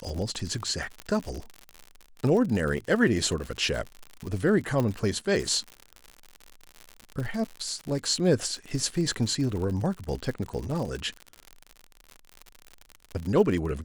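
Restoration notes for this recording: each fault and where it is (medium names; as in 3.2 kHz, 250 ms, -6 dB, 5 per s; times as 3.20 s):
crackle 85 per s -32 dBFS
1.00 s: pop -21 dBFS
4.80 s: pop -15 dBFS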